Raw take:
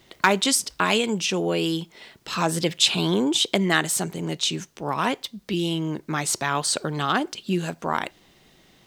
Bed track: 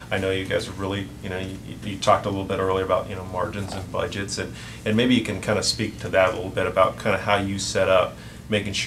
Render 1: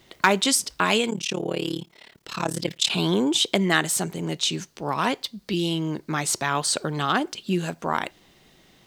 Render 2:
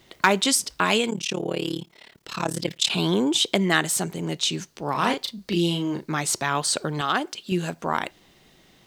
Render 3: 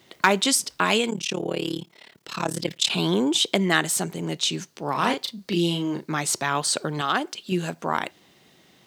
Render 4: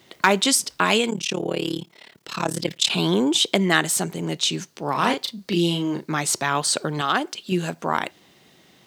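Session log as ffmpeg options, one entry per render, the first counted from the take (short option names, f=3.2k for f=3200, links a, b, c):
-filter_complex "[0:a]asettb=1/sr,asplit=3[a][b][c];[a]atrim=end=1.104[d];[b]atrim=start=1.1:end=2.9,asetpts=PTS-STARTPTS,afade=t=in:d=0.004:c=qsin,afade=t=out:st=1.796:d=0.004:c=qsin,tremolo=f=36:d=0.947[e];[c]atrim=start=2.896[f];[d][e]acrossfade=d=0.004:c1=hsin:c2=qsin[g];[g][f]acrossfade=d=0.004:c1=qsin:c2=hsin,asettb=1/sr,asplit=3[h][i][j];[h]atrim=end=4.524[k];[i]atrim=start=4.52:end=6.15,asetpts=PTS-STARTPTS,afade=t=in:d=0.004:c=qsin,afade=t=out:st=1.626:d=0.004:c=qsin,equalizer=f=4.5k:t=o:w=0.31:g=6[l];[j]atrim=start=6.146[m];[k][l]acrossfade=d=0.004:c1=hsin:c2=qsin[n];[n][m]acrossfade=d=0.004:c1=qsin:c2=hsin"
-filter_complex "[0:a]asettb=1/sr,asplit=3[a][b][c];[a]atrim=end=4.914[d];[b]atrim=start=4.91:end=6.07,asetpts=PTS-STARTPTS,afade=t=in:d=0.004:c=qsin,afade=t=out:st=1.156:d=0.004:c=qsin,asplit=2[e][f];[f]adelay=35,volume=-5.5dB[g];[e][g]amix=inputs=2:normalize=0,atrim=end_sample=51156[h];[c]atrim=start=6.066[i];[d][h]acrossfade=d=0.004:c1=hsin:c2=qsin[j];[j][i]acrossfade=d=0.004:c1=qsin:c2=hsin,asettb=1/sr,asplit=3[k][l][m];[k]atrim=end=7.014[n];[l]atrim=start=7.01:end=7.52,asetpts=PTS-STARTPTS,afade=t=in:d=0.004:c=qsin,afade=t=out:st=0.506:d=0.004:c=qsin,lowshelf=f=230:g=-10[o];[m]atrim=start=7.516[p];[n][o]acrossfade=d=0.004:c1=hsin:c2=qsin[q];[q][p]acrossfade=d=0.004:c1=qsin:c2=hsin"
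-af "highpass=110"
-af "volume=2dB,alimiter=limit=-1dB:level=0:latency=1"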